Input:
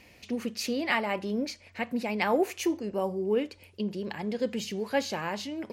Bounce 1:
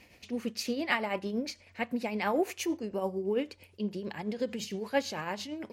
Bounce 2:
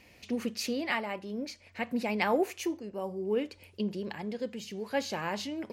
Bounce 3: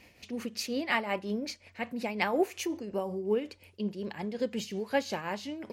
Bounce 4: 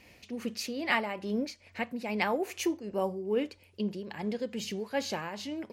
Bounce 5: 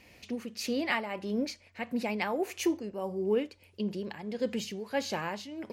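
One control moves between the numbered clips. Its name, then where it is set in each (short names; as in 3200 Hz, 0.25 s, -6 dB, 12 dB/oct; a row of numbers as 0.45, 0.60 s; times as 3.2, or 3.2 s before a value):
tremolo, rate: 8.9, 0.6, 5.5, 2.4, 1.6 Hz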